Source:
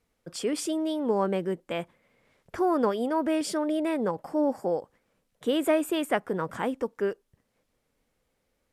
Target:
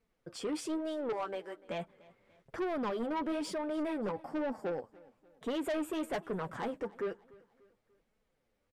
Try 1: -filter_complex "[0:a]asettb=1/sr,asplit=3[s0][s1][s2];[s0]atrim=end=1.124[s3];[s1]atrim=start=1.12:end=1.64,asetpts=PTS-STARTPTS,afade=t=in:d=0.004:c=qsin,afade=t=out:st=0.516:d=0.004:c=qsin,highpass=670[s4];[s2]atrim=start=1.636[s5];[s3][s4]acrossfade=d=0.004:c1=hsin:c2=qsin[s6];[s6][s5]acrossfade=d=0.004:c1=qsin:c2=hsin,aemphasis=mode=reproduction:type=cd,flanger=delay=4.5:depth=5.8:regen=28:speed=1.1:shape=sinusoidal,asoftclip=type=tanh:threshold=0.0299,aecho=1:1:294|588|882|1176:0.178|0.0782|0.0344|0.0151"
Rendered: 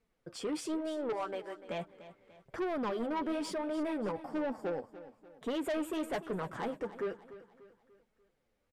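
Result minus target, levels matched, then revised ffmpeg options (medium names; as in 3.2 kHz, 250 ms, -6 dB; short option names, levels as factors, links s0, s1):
echo-to-direct +7.5 dB
-filter_complex "[0:a]asettb=1/sr,asplit=3[s0][s1][s2];[s0]atrim=end=1.124[s3];[s1]atrim=start=1.12:end=1.64,asetpts=PTS-STARTPTS,afade=t=in:d=0.004:c=qsin,afade=t=out:st=0.516:d=0.004:c=qsin,highpass=670[s4];[s2]atrim=start=1.636[s5];[s3][s4]acrossfade=d=0.004:c1=hsin:c2=qsin[s6];[s6][s5]acrossfade=d=0.004:c1=qsin:c2=hsin,aemphasis=mode=reproduction:type=cd,flanger=delay=4.5:depth=5.8:regen=28:speed=1.1:shape=sinusoidal,asoftclip=type=tanh:threshold=0.0299,aecho=1:1:294|588|882:0.075|0.033|0.0145"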